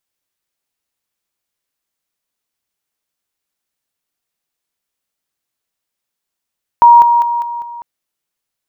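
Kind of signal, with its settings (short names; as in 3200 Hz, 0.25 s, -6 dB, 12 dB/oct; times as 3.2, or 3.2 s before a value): level ladder 947 Hz -1.5 dBFS, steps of -6 dB, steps 5, 0.20 s 0.00 s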